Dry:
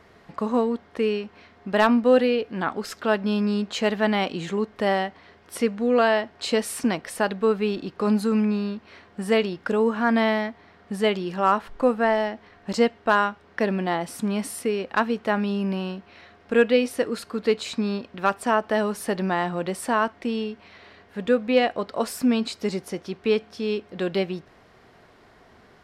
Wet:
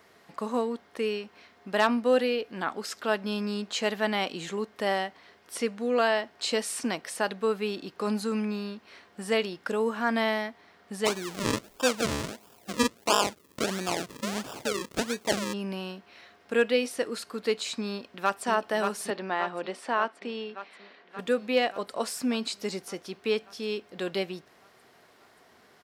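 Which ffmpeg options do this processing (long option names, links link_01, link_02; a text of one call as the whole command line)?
ffmpeg -i in.wav -filter_complex "[0:a]asplit=3[link_01][link_02][link_03];[link_01]afade=type=out:start_time=11.05:duration=0.02[link_04];[link_02]acrusher=samples=41:mix=1:aa=0.000001:lfo=1:lforange=41:lforate=1.5,afade=type=in:start_time=11.05:duration=0.02,afade=type=out:start_time=15.52:duration=0.02[link_05];[link_03]afade=type=in:start_time=15.52:duration=0.02[link_06];[link_04][link_05][link_06]amix=inputs=3:normalize=0,asplit=2[link_07][link_08];[link_08]afade=type=in:start_time=17.89:duration=0.01,afade=type=out:start_time=18.45:duration=0.01,aecho=0:1:580|1160|1740|2320|2900|3480|4060|4640|5220|5800|6380|6960:0.562341|0.393639|0.275547|0.192883|0.135018|0.0945127|0.0661589|0.0463112|0.0324179|0.0226925|0.0158848|0.0111193[link_09];[link_07][link_09]amix=inputs=2:normalize=0,asettb=1/sr,asplit=3[link_10][link_11][link_12];[link_10]atrim=end=19.104[link_13];[link_11]atrim=start=19.1:end=21.19,asetpts=PTS-STARTPTS,afade=type=in:duration=0.004:curve=qsin,afade=type=out:start_time=2.086:duration=0.004:curve=qsin,highpass=250,lowpass=3700[link_14];[link_12]atrim=start=21.186[link_15];[link_13][link_14]acrossfade=duration=0.004:curve1=hsin:curve2=qsin[link_16];[link_16][link_15]acrossfade=duration=0.004:curve1=qsin:curve2=hsin,acrossover=split=8600[link_17][link_18];[link_18]acompressor=threshold=-59dB:ratio=4:attack=1:release=60[link_19];[link_17][link_19]amix=inputs=2:normalize=0,highpass=frequency=260:poles=1,aemphasis=mode=production:type=50kf,volume=-4.5dB" out.wav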